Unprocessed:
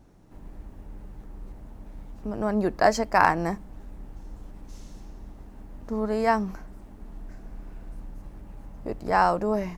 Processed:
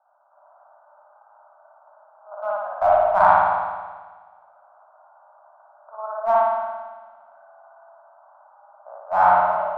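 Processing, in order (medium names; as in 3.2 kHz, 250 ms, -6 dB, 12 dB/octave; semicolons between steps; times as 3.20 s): Chebyshev band-pass 590–1500 Hz, order 5; in parallel at -9.5 dB: one-sided clip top -27 dBFS; on the sum: reverberation RT60 1.4 s, pre-delay 55 ms, DRR -5.5 dB; trim -1 dB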